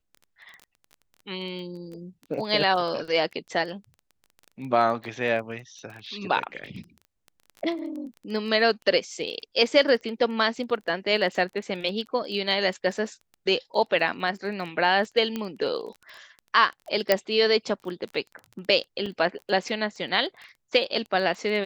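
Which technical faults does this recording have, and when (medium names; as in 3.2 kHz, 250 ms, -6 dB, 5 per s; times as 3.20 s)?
crackle 15 per s -34 dBFS
15.36 s: pop -16 dBFS
17.12 s: pop -5 dBFS
19.06 s: dropout 4.7 ms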